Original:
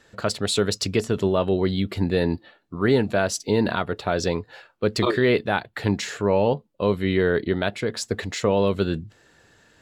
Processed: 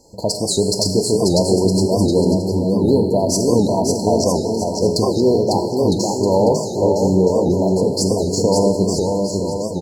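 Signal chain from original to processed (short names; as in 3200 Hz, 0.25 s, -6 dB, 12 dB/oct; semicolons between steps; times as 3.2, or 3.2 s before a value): high shelf 6900 Hz +5 dB; in parallel at +0.5 dB: compressor, threshold -28 dBFS, peak gain reduction 13.5 dB; on the sum: brick-wall FIR band-stop 1000–4100 Hz; bouncing-ball echo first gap 0.55 s, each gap 0.75×, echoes 5; non-linear reverb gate 0.47 s falling, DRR 5.5 dB; record warp 78 rpm, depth 160 cents; gain +1.5 dB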